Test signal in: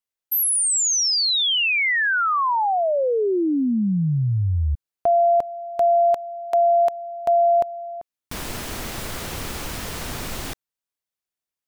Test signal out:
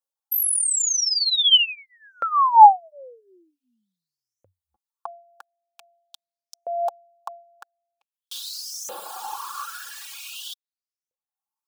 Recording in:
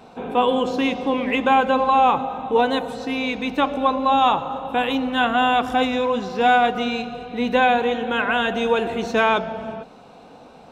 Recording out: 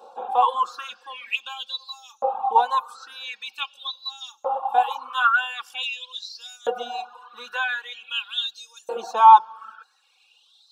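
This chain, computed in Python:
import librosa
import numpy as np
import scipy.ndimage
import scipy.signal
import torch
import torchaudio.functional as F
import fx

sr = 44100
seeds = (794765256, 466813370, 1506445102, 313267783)

y = fx.fixed_phaser(x, sr, hz=410.0, stages=8)
y = y + 0.68 * np.pad(y, (int(3.6 * sr / 1000.0), 0))[:len(y)]
y = fx.filter_lfo_highpass(y, sr, shape='saw_up', hz=0.45, low_hz=530.0, high_hz=6300.0, q=6.0)
y = fx.dereverb_blind(y, sr, rt60_s=0.88)
y = y * librosa.db_to_amplitude(-3.0)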